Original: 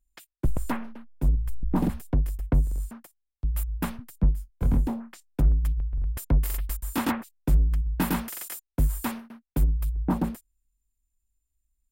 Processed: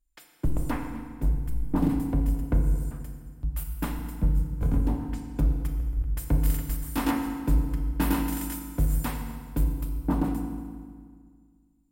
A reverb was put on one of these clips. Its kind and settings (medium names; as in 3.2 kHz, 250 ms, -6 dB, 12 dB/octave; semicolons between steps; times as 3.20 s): FDN reverb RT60 1.8 s, low-frequency decay 1.25×, high-frequency decay 0.8×, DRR 2.5 dB; trim -2.5 dB